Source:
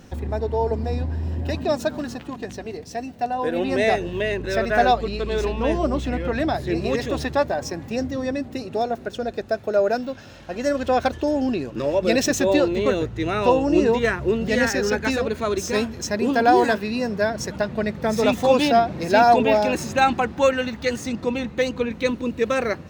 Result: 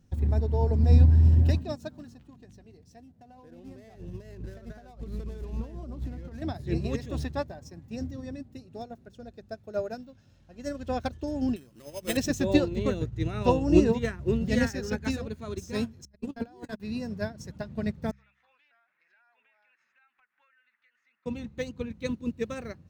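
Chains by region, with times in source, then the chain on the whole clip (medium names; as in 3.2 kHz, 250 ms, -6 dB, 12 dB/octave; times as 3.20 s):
2.99–6.42 s: median filter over 15 samples + compression 10:1, threshold -24 dBFS
11.56–12.17 s: tilt EQ +2.5 dB/octave + sample-rate reducer 5.7 kHz
16.05–16.80 s: gate -19 dBFS, range -41 dB + compressor with a negative ratio -24 dBFS
18.11–21.26 s: Butterworth band-pass 1.8 kHz, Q 1.7 + compression 5:1, threshold -39 dBFS
whole clip: tone controls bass +15 dB, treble +6 dB; de-hum 66.94 Hz, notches 3; upward expansion 2.5:1, over -24 dBFS; trim -3.5 dB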